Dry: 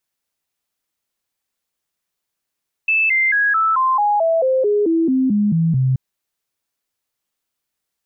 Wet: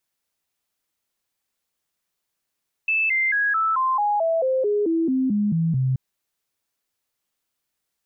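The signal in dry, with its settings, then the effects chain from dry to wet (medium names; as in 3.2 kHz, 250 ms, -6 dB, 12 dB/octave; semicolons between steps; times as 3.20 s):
stepped sine 2.63 kHz down, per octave 3, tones 14, 0.22 s, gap 0.00 s -13 dBFS
peak limiter -18 dBFS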